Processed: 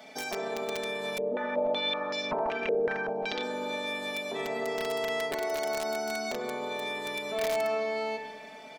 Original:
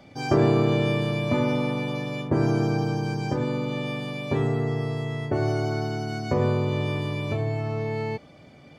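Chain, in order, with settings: peak limiter -21 dBFS, peak gain reduction 11.5 dB; high-pass 290 Hz 12 dB/octave; tilt EQ +2 dB/octave; compression 12:1, threshold -34 dBFS, peak gain reduction 6 dB; peaking EQ 680 Hz +5 dB 0.57 oct; reverberation RT60 2.2 s, pre-delay 10 ms, DRR 6 dB; integer overflow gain 26 dB; comb 4.6 ms, depth 86%; 1.18–3.43 s: step-sequenced low-pass 5.3 Hz 470–5100 Hz

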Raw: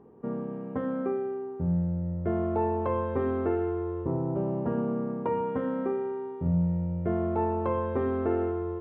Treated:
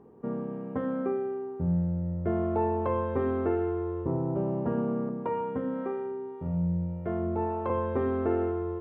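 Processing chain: 5.09–7.70 s: harmonic tremolo 1.8 Hz, depth 50%, crossover 480 Hz

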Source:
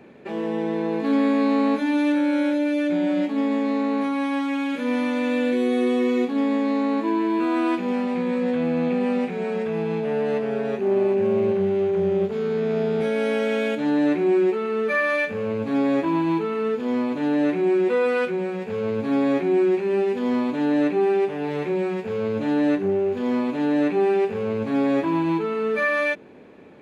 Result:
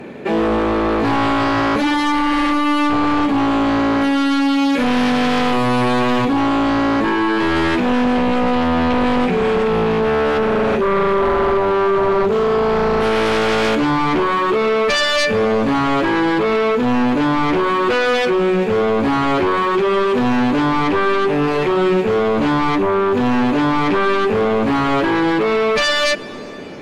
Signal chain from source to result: in parallel at +0.5 dB: peak limiter -18.5 dBFS, peak gain reduction 7 dB; on the sum: sine folder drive 10 dB, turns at -7.5 dBFS; reverberation RT60 4.0 s, pre-delay 88 ms, DRR 18 dB; trim -5.5 dB

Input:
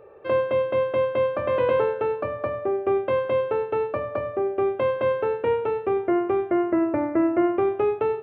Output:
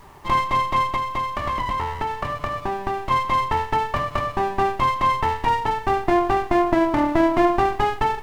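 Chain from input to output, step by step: comb filter that takes the minimum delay 1 ms; 0.95–3.11 s: compression, threshold -28 dBFS, peak gain reduction 7.5 dB; added noise pink -62 dBFS; trim +6 dB

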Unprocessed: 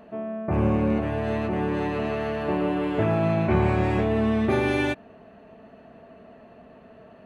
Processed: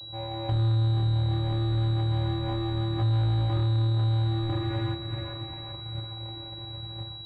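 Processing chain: on a send: flutter echo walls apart 4.7 m, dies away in 0.22 s; on the sum: vocoder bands 8, square 112 Hz; phaser 1 Hz, delay 3.9 ms, feedback 35%; in parallel at -10 dB: sample-rate reducer 1.5 kHz, jitter 0%; on the sum: saturation -20.5 dBFS, distortion -8 dB; level rider gain up to 10 dB; two-band feedback delay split 410 Hz, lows 287 ms, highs 391 ms, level -14 dB; compression 6:1, threshold -27 dBFS, peak gain reduction 14 dB; peaking EQ 450 Hz -10.5 dB 1.9 oct; class-D stage that switches slowly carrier 3.9 kHz; trim +4.5 dB

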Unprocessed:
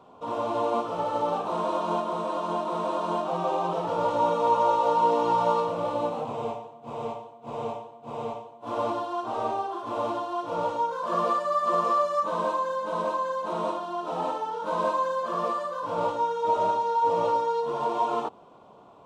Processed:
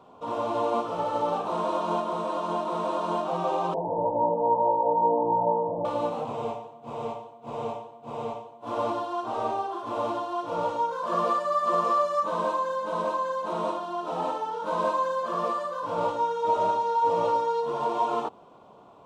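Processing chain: 3.74–5.85 s: steep low-pass 970 Hz 96 dB/octave

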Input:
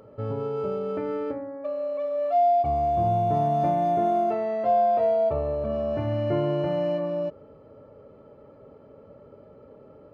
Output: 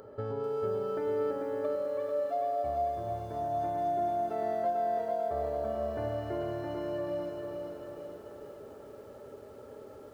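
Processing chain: treble shelf 3.5 kHz +9 dB; compression 10:1, threshold -31 dBFS, peak gain reduction 13.5 dB; graphic EQ with 31 bands 160 Hz -12 dB, 400 Hz +7 dB, 800 Hz +5 dB, 1.6 kHz +9 dB, 2.5 kHz -7 dB; bit-crushed delay 442 ms, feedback 55%, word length 10-bit, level -4.5 dB; trim -2.5 dB

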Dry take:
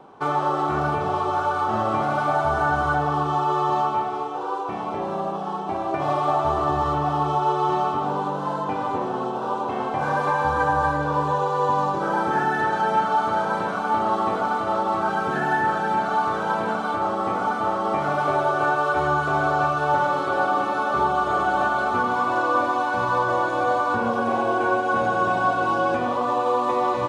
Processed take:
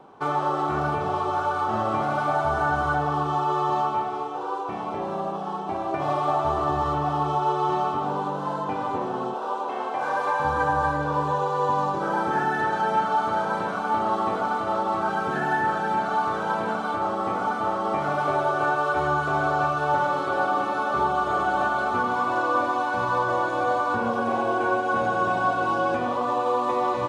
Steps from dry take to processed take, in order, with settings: 9.34–10.40 s: high-pass 370 Hz 12 dB/octave; trim -2 dB

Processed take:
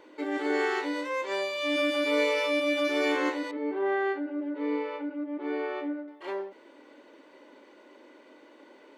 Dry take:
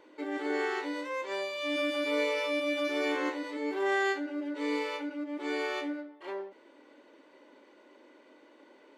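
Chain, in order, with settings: 3.51–6.08 s: tape spacing loss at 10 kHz 42 dB; trim +4 dB

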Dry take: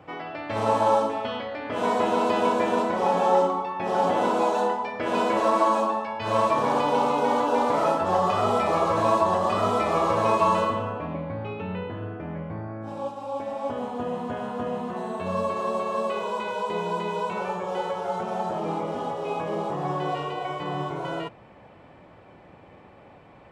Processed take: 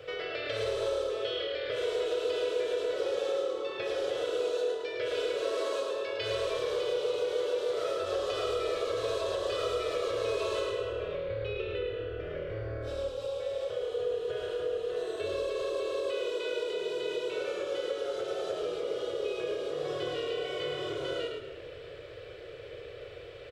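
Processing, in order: FFT filter 130 Hz 0 dB, 240 Hz -30 dB, 470 Hz +15 dB, 880 Hz -18 dB, 1.4 kHz +3 dB, 2.2 kHz +3 dB, 3.6 kHz +14 dB, 7.1 kHz +7 dB; compression 3:1, threshold -35 dBFS, peak gain reduction 18 dB; frequency-shifting echo 108 ms, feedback 37%, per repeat -39 Hz, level -5 dB; on a send at -10 dB: reverberation RT60 1.7 s, pre-delay 3 ms

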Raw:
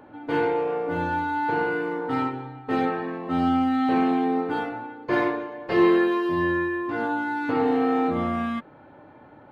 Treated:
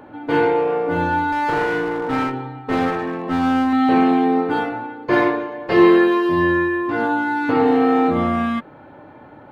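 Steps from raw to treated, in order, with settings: 1.32–3.73 s: one-sided clip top -27 dBFS; trim +6.5 dB

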